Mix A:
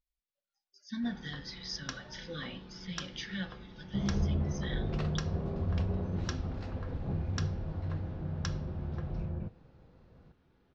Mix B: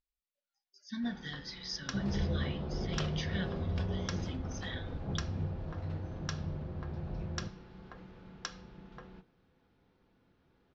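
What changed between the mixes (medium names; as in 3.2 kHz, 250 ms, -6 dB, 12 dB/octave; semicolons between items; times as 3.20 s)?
second sound: entry -2.00 s; master: add bass shelf 180 Hz -4 dB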